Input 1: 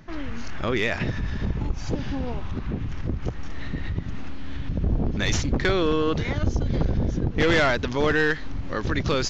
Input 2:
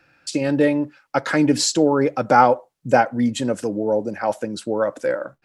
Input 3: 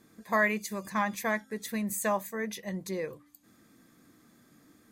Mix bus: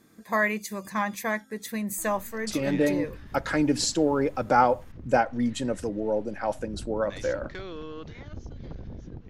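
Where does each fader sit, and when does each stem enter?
-16.5 dB, -6.5 dB, +1.5 dB; 1.90 s, 2.20 s, 0.00 s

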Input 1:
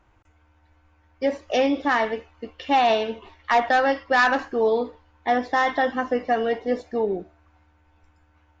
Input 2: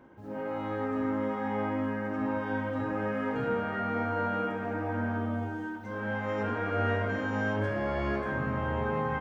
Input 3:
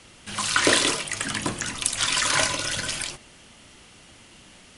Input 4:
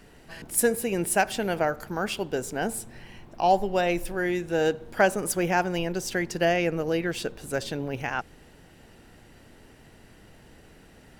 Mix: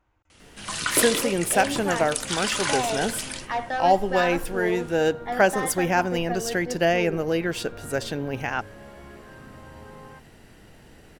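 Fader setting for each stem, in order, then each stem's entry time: -9.0 dB, -14.5 dB, -5.0 dB, +2.0 dB; 0.00 s, 1.00 s, 0.30 s, 0.40 s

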